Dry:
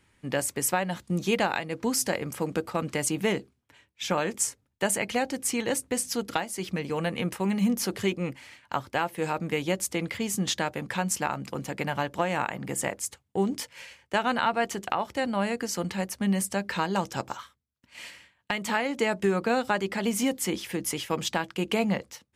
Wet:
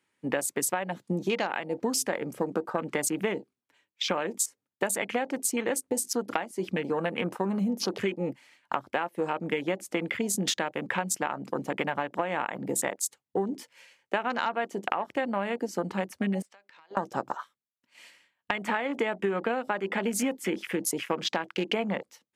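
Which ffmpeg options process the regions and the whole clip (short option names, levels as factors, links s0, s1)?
-filter_complex "[0:a]asettb=1/sr,asplit=3[s0][s1][s2];[s0]atrim=end=16.424[s3];[s1]atrim=start=16.42:end=16.97,asetpts=PTS-STARTPTS,afade=t=in:d=0.004:c=qsin,afade=t=out:st=0.546:d=0.004:c=qsin,highpass=730,lowpass=3600,acompressor=threshold=0.0126:ratio=20:attack=3.2:release=140:knee=1:detection=peak,aeval=exprs='(tanh(31.6*val(0)+0.6)-tanh(0.6))/31.6':c=same[s4];[s2]atrim=start=16.966[s5];[s3][s4]acrossfade=d=0.004:c1=hsin:c2=qsin[s6];[s6][s5]acrossfade=d=0.004:c1=qsin:c2=hsin,afwtdn=0.0141,highpass=240,acompressor=threshold=0.0251:ratio=6,volume=2.24"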